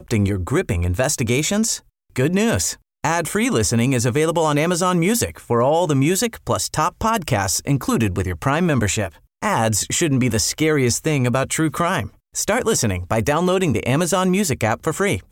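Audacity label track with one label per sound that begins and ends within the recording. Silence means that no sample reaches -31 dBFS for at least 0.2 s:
2.160000	2.740000	sound
3.040000	9.090000	sound
9.430000	12.070000	sound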